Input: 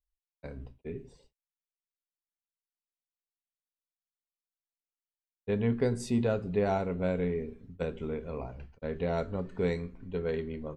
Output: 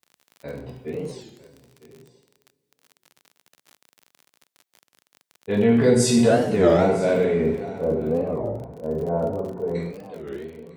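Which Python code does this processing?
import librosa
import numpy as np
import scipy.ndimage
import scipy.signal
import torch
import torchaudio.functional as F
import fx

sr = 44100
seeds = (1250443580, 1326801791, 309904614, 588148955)

y = fx.fade_out_tail(x, sr, length_s=2.38)
y = fx.lowpass(y, sr, hz=1000.0, slope=24, at=(7.59, 9.74), fade=0.02)
y = fx.transient(y, sr, attack_db=-3, sustain_db=9)
y = y + 10.0 ** (-19.0 / 20.0) * np.pad(y, (int(954 * sr / 1000.0), 0))[:len(y)]
y = fx.rev_double_slope(y, sr, seeds[0], early_s=0.58, late_s=2.4, knee_db=-18, drr_db=-3.5)
y = fx.dmg_crackle(y, sr, seeds[1], per_s=36.0, level_db=-41.0)
y = scipy.signal.sosfilt(scipy.signal.butter(2, 150.0, 'highpass', fs=sr, output='sos'), y)
y = fx.record_warp(y, sr, rpm=33.33, depth_cents=250.0)
y = y * 10.0 ** (6.5 / 20.0)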